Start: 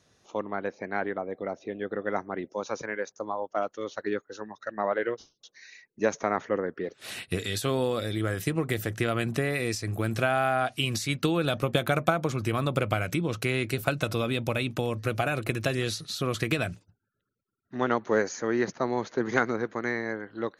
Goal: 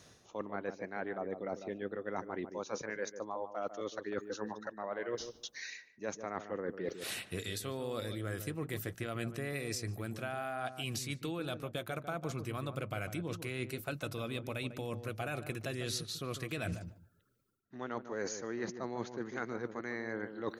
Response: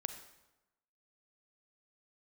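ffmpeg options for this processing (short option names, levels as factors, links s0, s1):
-filter_complex "[0:a]highshelf=f=8800:g=6,areverse,acompressor=threshold=0.00891:ratio=16,areverse,asplit=2[s0][s1];[s1]adelay=148,lowpass=f=840:p=1,volume=0.398,asplit=2[s2][s3];[s3]adelay=148,lowpass=f=840:p=1,volume=0.17,asplit=2[s4][s5];[s5]adelay=148,lowpass=f=840:p=1,volume=0.17[s6];[s0][s2][s4][s6]amix=inputs=4:normalize=0,volume=2"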